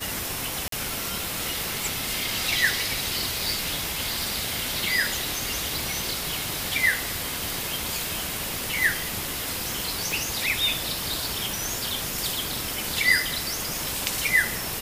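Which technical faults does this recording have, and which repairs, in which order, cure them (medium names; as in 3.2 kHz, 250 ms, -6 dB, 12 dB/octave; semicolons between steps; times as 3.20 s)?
0.68–0.72 s: dropout 43 ms
10.12 s: pop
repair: de-click; interpolate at 0.68 s, 43 ms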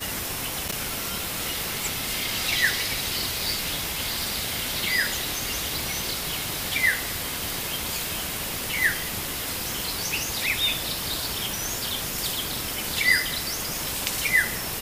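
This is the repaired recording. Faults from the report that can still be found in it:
nothing left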